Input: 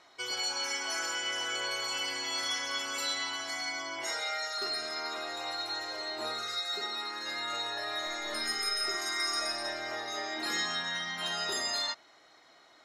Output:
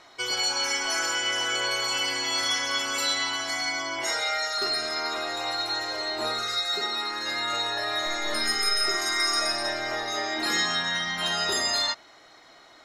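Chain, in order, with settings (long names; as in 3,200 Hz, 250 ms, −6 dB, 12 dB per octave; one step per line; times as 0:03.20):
low-shelf EQ 83 Hz +11 dB
level +7 dB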